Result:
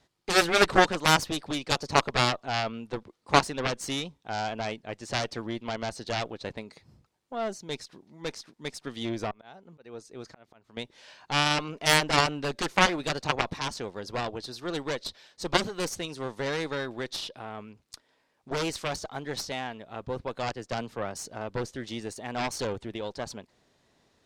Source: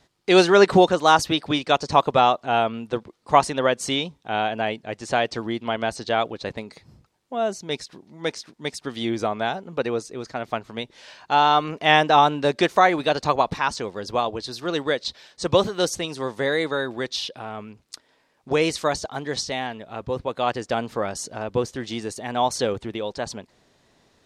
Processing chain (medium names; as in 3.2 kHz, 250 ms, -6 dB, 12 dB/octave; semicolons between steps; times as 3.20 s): 9.31–10.77 s: slow attack 585 ms; Chebyshev shaper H 2 -7 dB, 3 -23 dB, 7 -12 dB, 8 -17 dB, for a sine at -1 dBFS; 20.52–21.17 s: three bands expanded up and down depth 70%; trim -6 dB